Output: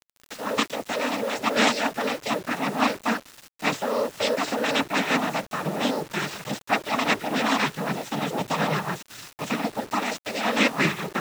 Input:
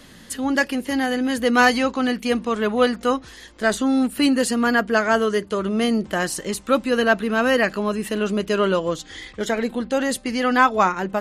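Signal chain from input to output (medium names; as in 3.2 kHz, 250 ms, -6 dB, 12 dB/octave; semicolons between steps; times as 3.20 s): full-wave rectifier; noise-vocoded speech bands 12; bit crusher 7-bit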